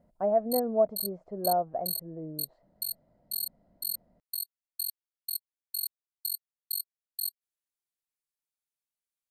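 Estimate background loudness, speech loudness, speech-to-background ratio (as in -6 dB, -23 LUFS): -35.5 LUFS, -30.0 LUFS, 5.5 dB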